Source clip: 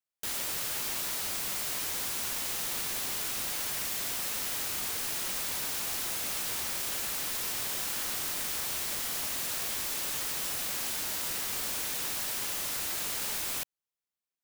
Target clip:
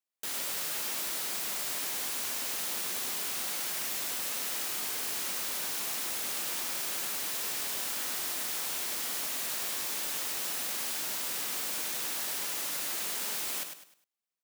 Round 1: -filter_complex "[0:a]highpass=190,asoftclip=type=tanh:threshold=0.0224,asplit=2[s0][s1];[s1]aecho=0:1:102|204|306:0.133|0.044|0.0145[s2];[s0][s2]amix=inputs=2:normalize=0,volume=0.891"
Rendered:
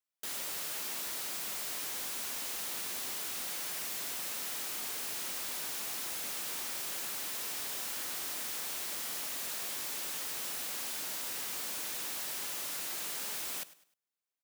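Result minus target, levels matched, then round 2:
saturation: distortion +17 dB; echo-to-direct -10.5 dB
-filter_complex "[0:a]highpass=190,asoftclip=type=tanh:threshold=0.0891,asplit=2[s0][s1];[s1]aecho=0:1:102|204|306|408:0.447|0.147|0.0486|0.0161[s2];[s0][s2]amix=inputs=2:normalize=0,volume=0.891"

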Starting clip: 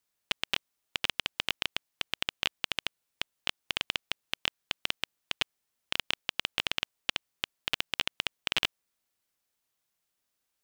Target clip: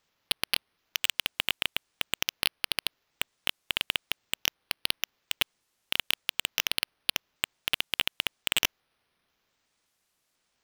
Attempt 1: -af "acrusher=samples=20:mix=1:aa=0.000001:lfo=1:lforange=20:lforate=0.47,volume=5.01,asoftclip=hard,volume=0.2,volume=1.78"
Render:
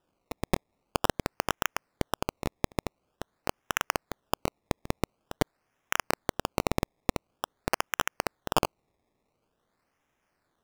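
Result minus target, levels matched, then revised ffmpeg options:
decimation with a swept rate: distortion +30 dB
-af "acrusher=samples=4:mix=1:aa=0.000001:lfo=1:lforange=4:lforate=0.47,volume=5.01,asoftclip=hard,volume=0.2,volume=1.78"

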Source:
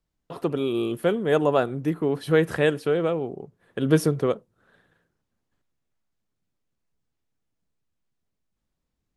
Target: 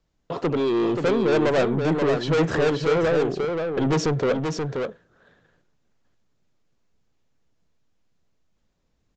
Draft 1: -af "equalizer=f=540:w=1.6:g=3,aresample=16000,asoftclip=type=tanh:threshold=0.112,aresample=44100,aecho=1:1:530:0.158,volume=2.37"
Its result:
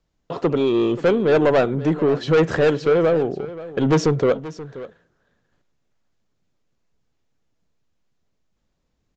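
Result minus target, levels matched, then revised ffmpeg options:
echo-to-direct -11 dB; saturation: distortion -4 dB
-af "equalizer=f=540:w=1.6:g=3,aresample=16000,asoftclip=type=tanh:threshold=0.0501,aresample=44100,aecho=1:1:530:0.562,volume=2.37"

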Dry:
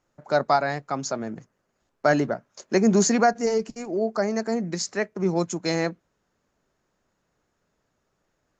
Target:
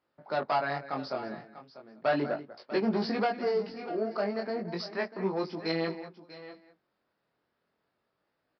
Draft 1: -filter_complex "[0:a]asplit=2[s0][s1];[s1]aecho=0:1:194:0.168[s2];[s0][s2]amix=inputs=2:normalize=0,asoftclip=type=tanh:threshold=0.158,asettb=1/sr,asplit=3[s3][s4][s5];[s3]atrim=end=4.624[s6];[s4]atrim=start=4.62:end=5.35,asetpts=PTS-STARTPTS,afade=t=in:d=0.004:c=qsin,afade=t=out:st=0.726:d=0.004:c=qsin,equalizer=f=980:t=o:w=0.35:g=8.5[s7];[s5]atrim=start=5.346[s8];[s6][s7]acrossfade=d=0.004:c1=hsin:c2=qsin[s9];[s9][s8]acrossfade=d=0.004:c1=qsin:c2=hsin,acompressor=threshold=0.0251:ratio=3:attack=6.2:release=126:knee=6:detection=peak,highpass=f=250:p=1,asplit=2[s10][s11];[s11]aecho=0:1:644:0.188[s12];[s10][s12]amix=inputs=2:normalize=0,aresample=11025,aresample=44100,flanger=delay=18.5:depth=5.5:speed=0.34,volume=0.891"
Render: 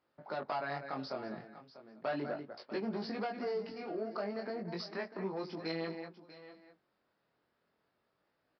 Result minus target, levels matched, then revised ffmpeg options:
compression: peak gain reduction +10 dB
-filter_complex "[0:a]asplit=2[s0][s1];[s1]aecho=0:1:194:0.168[s2];[s0][s2]amix=inputs=2:normalize=0,asoftclip=type=tanh:threshold=0.158,asettb=1/sr,asplit=3[s3][s4][s5];[s3]atrim=end=4.624[s6];[s4]atrim=start=4.62:end=5.35,asetpts=PTS-STARTPTS,afade=t=in:d=0.004:c=qsin,afade=t=out:st=0.726:d=0.004:c=qsin,equalizer=f=980:t=o:w=0.35:g=8.5[s7];[s5]atrim=start=5.346[s8];[s6][s7]acrossfade=d=0.004:c1=hsin:c2=qsin[s9];[s9][s8]acrossfade=d=0.004:c1=qsin:c2=hsin,highpass=f=250:p=1,asplit=2[s10][s11];[s11]aecho=0:1:644:0.188[s12];[s10][s12]amix=inputs=2:normalize=0,aresample=11025,aresample=44100,flanger=delay=18.5:depth=5.5:speed=0.34,volume=0.891"

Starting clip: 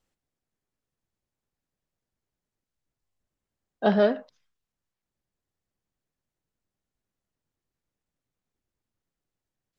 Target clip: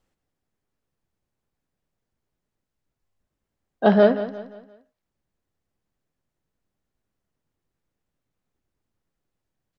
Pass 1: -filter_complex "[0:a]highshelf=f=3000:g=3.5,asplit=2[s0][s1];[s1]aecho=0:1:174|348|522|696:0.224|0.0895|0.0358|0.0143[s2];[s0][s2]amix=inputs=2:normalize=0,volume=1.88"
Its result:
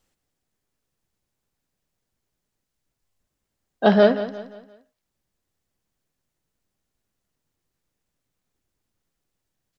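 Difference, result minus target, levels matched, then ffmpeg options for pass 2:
4 kHz band +5.0 dB
-filter_complex "[0:a]highshelf=f=3000:g=-6.5,asplit=2[s0][s1];[s1]aecho=0:1:174|348|522|696:0.224|0.0895|0.0358|0.0143[s2];[s0][s2]amix=inputs=2:normalize=0,volume=1.88"

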